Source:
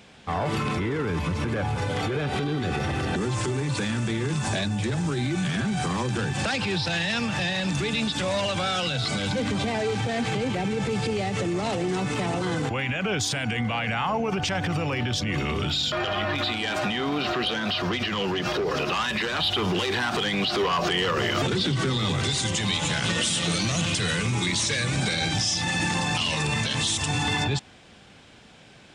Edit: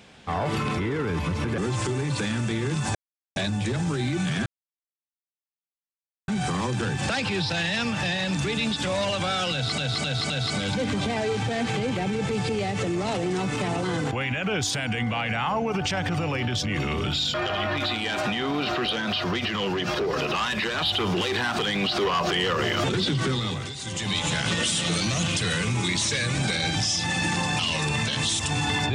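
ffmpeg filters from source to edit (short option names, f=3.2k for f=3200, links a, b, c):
-filter_complex "[0:a]asplit=9[a][b][c][d][e][f][g][h][i];[a]atrim=end=1.582[j];[b]atrim=start=3.168:end=4.54,asetpts=PTS-STARTPTS,afade=t=out:st=1.368:d=0.004:c=hsin,apad=pad_dur=0.41[k];[c]atrim=start=4.54:end=5.64,asetpts=PTS-STARTPTS,afade=t=in:d=0.004:c=hsin,afade=t=out:st=1.096:d=0.004:c=hsin,apad=pad_dur=1.82[l];[d]atrim=start=5.64:end=9.142,asetpts=PTS-STARTPTS,afade=t=in:d=0.004:c=hsin[m];[e]atrim=start=8.878:end=9.142[n];[f]atrim=start=8.878:end=9.142[o];[g]atrim=start=8.878:end=22.32,asetpts=PTS-STARTPTS,afade=t=out:st=13.002:d=0.44:silence=0.266073[p];[h]atrim=start=22.32:end=22.34,asetpts=PTS-STARTPTS,volume=-11.5dB[q];[i]atrim=start=22.34,asetpts=PTS-STARTPTS,afade=t=in:d=0.44:silence=0.266073[r];[k][l][m]concat=n=3:v=0:a=1[s];[j][s]acrossfade=d=0.004:c1=hsin:c2=hsin[t];[t][n]acrossfade=d=0.004:c1=hsin:c2=hsin[u];[u][o]acrossfade=d=0.004:c1=hsin:c2=hsin[v];[p][q][r]concat=n=3:v=0:a=1[w];[v][w]acrossfade=d=0.004:c1=hsin:c2=hsin"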